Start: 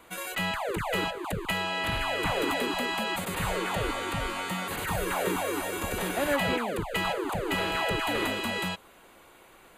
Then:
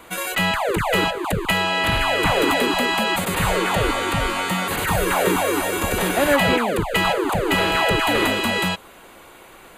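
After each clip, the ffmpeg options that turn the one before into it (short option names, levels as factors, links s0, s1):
-af "acontrast=71,volume=1.41"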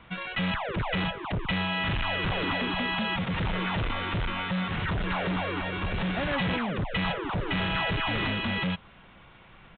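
-af "lowshelf=f=240:t=q:w=1.5:g=12.5,aresample=8000,asoftclip=type=hard:threshold=0.188,aresample=44100,tiltshelf=f=870:g=-3,volume=0.355"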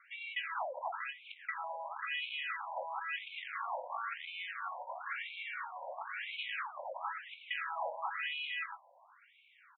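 -filter_complex "[0:a]highshelf=f=2700:g=-8.5,asplit=2[s0][s1];[s1]adelay=19,volume=0.335[s2];[s0][s2]amix=inputs=2:normalize=0,afftfilt=real='re*between(b*sr/1024,700*pow(3100/700,0.5+0.5*sin(2*PI*0.98*pts/sr))/1.41,700*pow(3100/700,0.5+0.5*sin(2*PI*0.98*pts/sr))*1.41)':imag='im*between(b*sr/1024,700*pow(3100/700,0.5+0.5*sin(2*PI*0.98*pts/sr))/1.41,700*pow(3100/700,0.5+0.5*sin(2*PI*0.98*pts/sr))*1.41)':win_size=1024:overlap=0.75,volume=0.794"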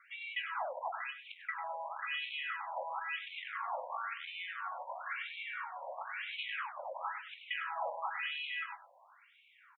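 -af "aecho=1:1:98:0.224"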